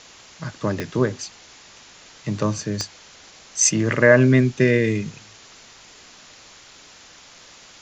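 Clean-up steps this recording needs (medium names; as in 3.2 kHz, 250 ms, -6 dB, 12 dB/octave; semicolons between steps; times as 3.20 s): de-click; noise print and reduce 18 dB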